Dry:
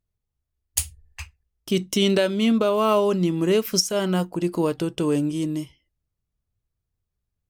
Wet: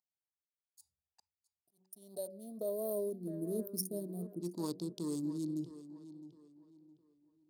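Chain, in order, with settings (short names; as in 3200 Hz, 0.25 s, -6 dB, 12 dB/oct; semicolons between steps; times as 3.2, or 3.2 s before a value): Wiener smoothing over 41 samples; notch 5900 Hz, Q 16; de-hum 94.42 Hz, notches 6; spectral gain 1.6–4.42, 740–8800 Hz -25 dB; EQ curve 170 Hz 0 dB, 340 Hz -16 dB, 550 Hz -21 dB, 980 Hz -7 dB, 1400 Hz -22 dB, 2800 Hz -24 dB, 4300 Hz +8 dB, 9000 Hz +4 dB, 16000 Hz +7 dB; reverse; compressor 6:1, threshold -40 dBFS, peak gain reduction 25 dB; reverse; auto swell 0.603 s; high-pass sweep 850 Hz -> 330 Hz, 1.68–3.49; on a send: tape echo 0.662 s, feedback 34%, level -12.5 dB, low-pass 4100 Hz; on the sum: gain +6 dB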